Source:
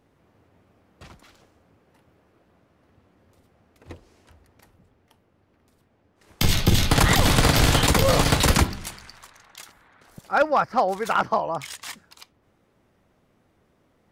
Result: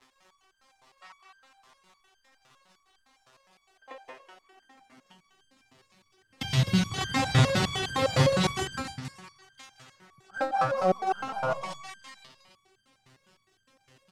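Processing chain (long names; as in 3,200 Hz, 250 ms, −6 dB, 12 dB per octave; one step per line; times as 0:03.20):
high-pass filter sweep 970 Hz → 120 Hz, 0:03.23–0:05.59
gain on a spectral selection 0:03.77–0:05.18, 620–3,500 Hz +9 dB
surface crackle 260 per second −40 dBFS
in parallel at −11.5 dB: wrap-around overflow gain 21 dB
on the sum: high-frequency loss of the air 70 metres
loudspeakers that aren't time-aligned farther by 62 metres −6 dB, 98 metres −11 dB
on a send at −23 dB: convolution reverb RT60 2.6 s, pre-delay 43 ms
on the sum: step-sequenced resonator 9.8 Hz 130–1,600 Hz
level +7 dB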